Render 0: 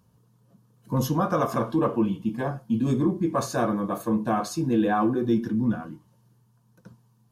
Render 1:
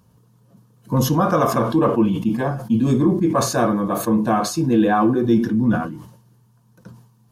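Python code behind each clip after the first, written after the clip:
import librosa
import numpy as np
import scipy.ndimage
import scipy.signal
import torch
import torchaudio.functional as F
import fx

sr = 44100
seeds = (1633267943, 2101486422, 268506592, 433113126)

y = fx.sustainer(x, sr, db_per_s=79.0)
y = y * 10.0 ** (6.0 / 20.0)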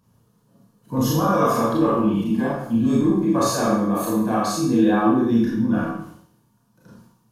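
y = fx.rev_schroeder(x, sr, rt60_s=0.6, comb_ms=27, drr_db=-5.5)
y = y * 10.0 ** (-8.0 / 20.0)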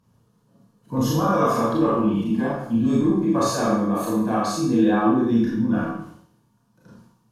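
y = fx.high_shelf(x, sr, hz=12000.0, db=-11.0)
y = y * 10.0 ** (-1.0 / 20.0)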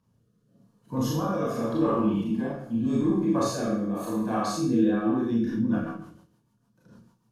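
y = fx.rotary_switch(x, sr, hz=0.85, then_hz=6.7, switch_at_s=4.95)
y = y * 10.0 ** (-3.5 / 20.0)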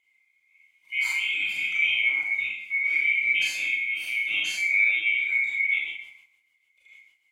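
y = fx.band_swap(x, sr, width_hz=2000)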